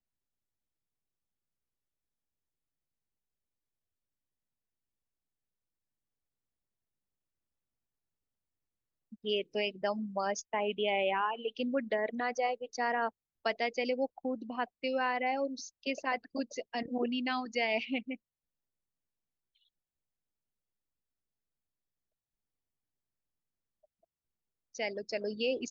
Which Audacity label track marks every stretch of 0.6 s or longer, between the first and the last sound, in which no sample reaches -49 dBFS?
18.150000	24.750000	silence